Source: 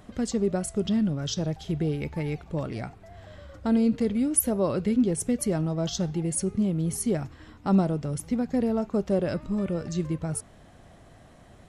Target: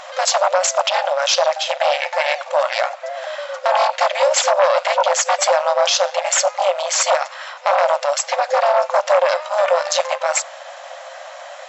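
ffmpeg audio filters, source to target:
-filter_complex "[0:a]asplit=3[a][b][c];[b]asetrate=35002,aresample=44100,atempo=1.25992,volume=-6dB[d];[c]asetrate=37084,aresample=44100,atempo=1.18921,volume=-16dB[e];[a][d][e]amix=inputs=3:normalize=0,aeval=exprs='0.398*(cos(1*acos(clip(val(0)/0.398,-1,1)))-cos(1*PI/2))+0.0355*(cos(5*acos(clip(val(0)/0.398,-1,1)))-cos(5*PI/2))+0.0631*(cos(8*acos(clip(val(0)/0.398,-1,1)))-cos(8*PI/2))':c=same,afftfilt=real='re*between(b*sr/4096,510,7700)':imag='im*between(b*sr/4096,510,7700)':win_size=4096:overlap=0.75,alimiter=level_in=23.5dB:limit=-1dB:release=50:level=0:latency=1,volume=-5dB"

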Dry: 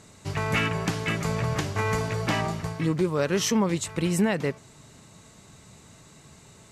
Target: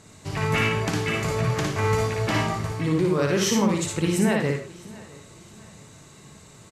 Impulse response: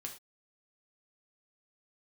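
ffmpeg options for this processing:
-filter_complex "[0:a]aecho=1:1:664|1328|1992:0.0794|0.031|0.0121,asplit=2[a][b];[1:a]atrim=start_sample=2205,adelay=57[c];[b][c]afir=irnorm=-1:irlink=0,volume=2dB[d];[a][d]amix=inputs=2:normalize=0"

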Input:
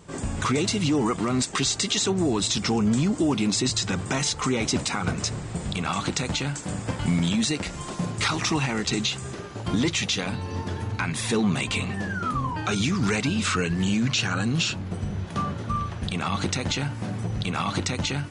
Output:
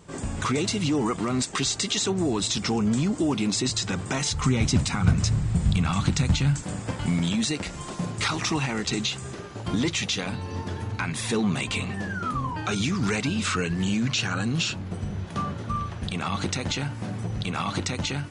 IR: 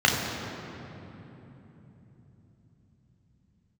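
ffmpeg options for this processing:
-filter_complex "[0:a]asplit=3[a][b][c];[a]afade=t=out:st=4.3:d=0.02[d];[b]asubboost=boost=5.5:cutoff=170,afade=t=in:st=4.3:d=0.02,afade=t=out:st=6.62:d=0.02[e];[c]afade=t=in:st=6.62:d=0.02[f];[d][e][f]amix=inputs=3:normalize=0,volume=-1.5dB"

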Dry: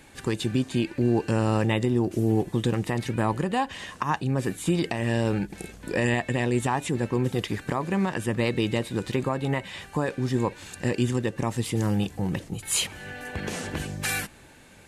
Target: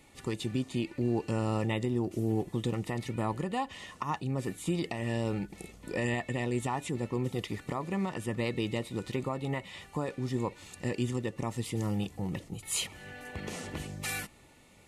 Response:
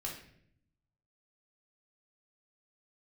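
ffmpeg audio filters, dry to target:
-af "asuperstop=centerf=1600:order=20:qfactor=7,volume=-7dB"

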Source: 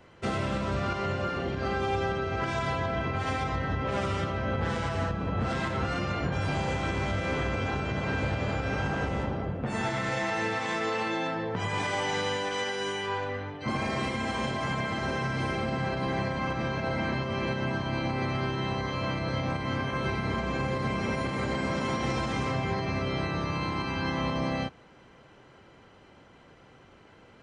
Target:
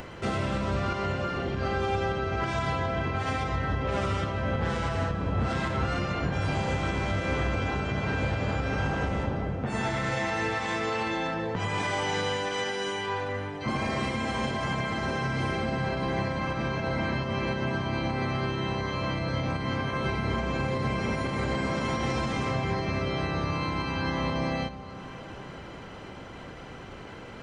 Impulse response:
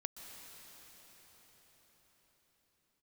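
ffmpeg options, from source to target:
-filter_complex "[0:a]acompressor=mode=upward:threshold=-32dB:ratio=2.5,asplit=2[a][b];[1:a]atrim=start_sample=2205,lowshelf=f=79:g=11[c];[b][c]afir=irnorm=-1:irlink=0,volume=-4dB[d];[a][d]amix=inputs=2:normalize=0,volume=-2.5dB"

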